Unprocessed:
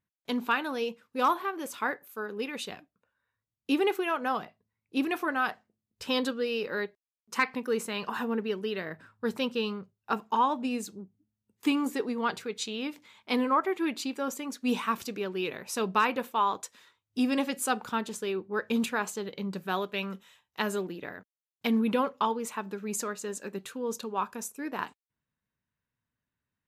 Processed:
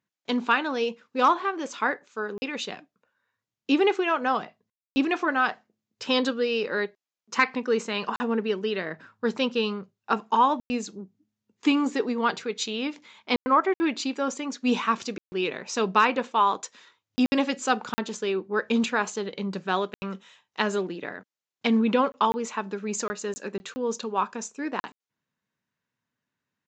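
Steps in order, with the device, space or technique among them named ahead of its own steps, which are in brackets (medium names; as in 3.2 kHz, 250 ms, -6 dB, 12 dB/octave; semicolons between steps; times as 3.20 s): call with lost packets (high-pass 160 Hz 12 dB/octave; resampled via 16 kHz; lost packets bursts); trim +5 dB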